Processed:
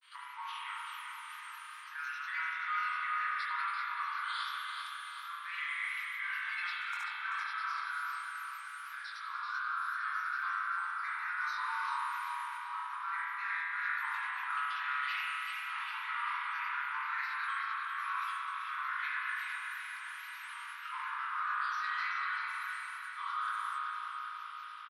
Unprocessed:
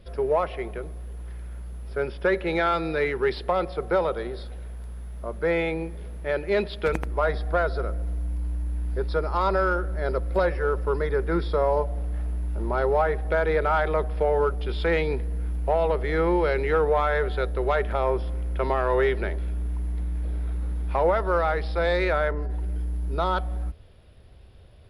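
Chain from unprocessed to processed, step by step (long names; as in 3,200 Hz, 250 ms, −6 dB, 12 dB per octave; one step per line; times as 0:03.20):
Butterworth high-pass 1,100 Hz 96 dB per octave
dynamic equaliser 3,000 Hz, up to −6 dB, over −44 dBFS, Q 0.75
reversed playback
downward compressor, threshold −45 dBFS, peak gain reduction 18.5 dB
reversed playback
granular cloud, spray 100 ms, pitch spread up and down by 3 semitones
double-tracking delay 21 ms −4 dB
on a send: feedback echo with a low-pass in the loop 386 ms, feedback 64%, low-pass 4,700 Hz, level −4 dB
on the sum: spring reverb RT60 2.2 s, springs 35 ms, chirp 60 ms, DRR −5 dB
level +4 dB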